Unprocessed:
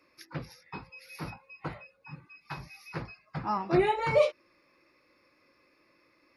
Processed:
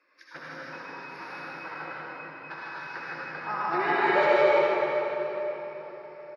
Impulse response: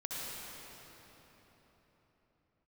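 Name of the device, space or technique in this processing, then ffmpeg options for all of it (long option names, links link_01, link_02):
station announcement: -filter_complex "[0:a]highpass=400,lowpass=4800,equalizer=frequency=1600:width_type=o:width=0.49:gain=9.5,aecho=1:1:154.5|244.9:0.708|0.562[link_01];[1:a]atrim=start_sample=2205[link_02];[link_01][link_02]afir=irnorm=-1:irlink=0"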